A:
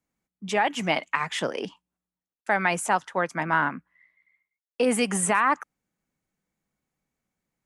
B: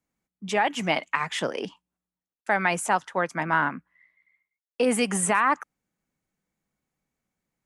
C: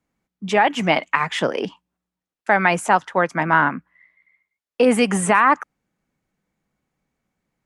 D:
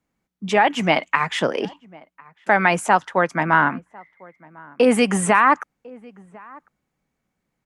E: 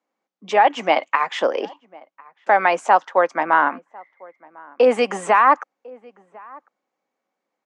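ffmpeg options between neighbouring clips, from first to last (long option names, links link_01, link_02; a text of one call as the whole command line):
ffmpeg -i in.wav -af anull out.wav
ffmpeg -i in.wav -af "aemphasis=mode=reproduction:type=cd,volume=7dB" out.wav
ffmpeg -i in.wav -filter_complex "[0:a]asplit=2[link_01][link_02];[link_02]adelay=1050,volume=-24dB,highshelf=frequency=4000:gain=-23.6[link_03];[link_01][link_03]amix=inputs=2:normalize=0" out.wav
ffmpeg -i in.wav -af "highpass=frequency=270:width=0.5412,highpass=frequency=270:width=1.3066,equalizer=frequency=540:width_type=q:width=4:gain=7,equalizer=frequency=780:width_type=q:width=4:gain=6,equalizer=frequency=1100:width_type=q:width=4:gain=5,lowpass=frequency=7000:width=0.5412,lowpass=frequency=7000:width=1.3066,volume=-3dB" out.wav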